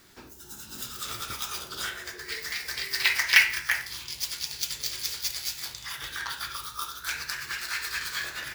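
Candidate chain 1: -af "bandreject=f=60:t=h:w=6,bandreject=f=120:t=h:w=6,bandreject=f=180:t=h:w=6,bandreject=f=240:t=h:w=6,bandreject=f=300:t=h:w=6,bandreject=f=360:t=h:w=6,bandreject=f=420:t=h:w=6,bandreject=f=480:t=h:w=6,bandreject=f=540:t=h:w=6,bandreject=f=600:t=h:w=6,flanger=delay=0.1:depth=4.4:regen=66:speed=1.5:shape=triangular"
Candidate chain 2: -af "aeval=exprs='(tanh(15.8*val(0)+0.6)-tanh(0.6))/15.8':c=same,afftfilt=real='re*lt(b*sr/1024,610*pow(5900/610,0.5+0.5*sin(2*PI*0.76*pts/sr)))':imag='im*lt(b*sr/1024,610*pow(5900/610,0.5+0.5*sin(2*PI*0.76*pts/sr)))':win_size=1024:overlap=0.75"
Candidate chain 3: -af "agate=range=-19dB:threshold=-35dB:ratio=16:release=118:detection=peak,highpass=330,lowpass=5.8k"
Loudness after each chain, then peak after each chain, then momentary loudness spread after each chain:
-33.0, -38.0, -29.5 LUFS; -6.5, -18.5, -3.5 dBFS; 12, 20, 19 LU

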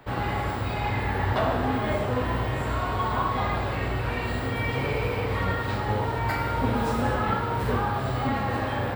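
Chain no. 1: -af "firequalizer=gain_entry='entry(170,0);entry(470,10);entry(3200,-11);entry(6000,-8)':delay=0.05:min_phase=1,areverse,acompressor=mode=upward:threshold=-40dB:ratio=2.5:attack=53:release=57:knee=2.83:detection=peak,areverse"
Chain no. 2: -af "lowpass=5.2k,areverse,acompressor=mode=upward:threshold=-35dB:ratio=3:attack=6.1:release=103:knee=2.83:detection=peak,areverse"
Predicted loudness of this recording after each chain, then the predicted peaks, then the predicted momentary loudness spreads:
-22.0, -27.0 LUFS; -7.0, -13.0 dBFS; 4, 3 LU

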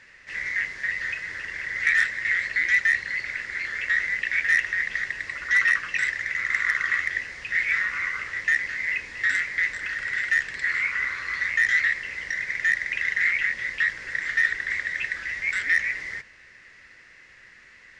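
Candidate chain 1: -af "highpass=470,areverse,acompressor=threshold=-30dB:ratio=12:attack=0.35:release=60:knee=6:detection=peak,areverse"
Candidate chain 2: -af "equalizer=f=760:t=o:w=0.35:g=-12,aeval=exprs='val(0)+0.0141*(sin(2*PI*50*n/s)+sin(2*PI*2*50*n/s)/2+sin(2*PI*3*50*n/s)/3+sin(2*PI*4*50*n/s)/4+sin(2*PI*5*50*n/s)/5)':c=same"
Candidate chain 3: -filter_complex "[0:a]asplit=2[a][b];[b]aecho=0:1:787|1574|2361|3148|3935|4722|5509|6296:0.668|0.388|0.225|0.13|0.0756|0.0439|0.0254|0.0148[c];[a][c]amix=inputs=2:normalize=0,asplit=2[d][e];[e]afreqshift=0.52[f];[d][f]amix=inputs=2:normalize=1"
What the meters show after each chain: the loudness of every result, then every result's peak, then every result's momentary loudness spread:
-34.0, -24.0, -25.0 LUFS; -26.5, -9.0, -9.0 dBFS; 3, 11, 13 LU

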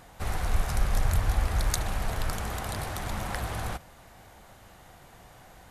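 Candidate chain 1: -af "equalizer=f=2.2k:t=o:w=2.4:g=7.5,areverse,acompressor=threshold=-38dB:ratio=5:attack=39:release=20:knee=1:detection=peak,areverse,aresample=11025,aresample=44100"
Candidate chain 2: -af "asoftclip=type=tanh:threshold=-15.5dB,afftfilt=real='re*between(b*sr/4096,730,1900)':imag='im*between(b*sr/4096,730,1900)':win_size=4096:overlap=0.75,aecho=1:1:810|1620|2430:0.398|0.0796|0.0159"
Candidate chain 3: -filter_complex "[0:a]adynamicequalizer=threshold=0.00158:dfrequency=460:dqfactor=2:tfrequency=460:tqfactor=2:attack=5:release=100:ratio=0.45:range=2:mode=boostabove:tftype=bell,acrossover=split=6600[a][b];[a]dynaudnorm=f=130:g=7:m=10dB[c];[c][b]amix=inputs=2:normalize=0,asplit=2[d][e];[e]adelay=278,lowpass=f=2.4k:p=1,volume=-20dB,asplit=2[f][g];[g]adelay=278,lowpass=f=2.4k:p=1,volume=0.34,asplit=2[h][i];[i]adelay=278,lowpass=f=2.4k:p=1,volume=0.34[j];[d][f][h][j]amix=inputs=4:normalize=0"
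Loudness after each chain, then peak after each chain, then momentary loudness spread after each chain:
-35.0, -40.5, -22.5 LUFS; -16.5, -22.5, -3.5 dBFS; 15, 17, 14 LU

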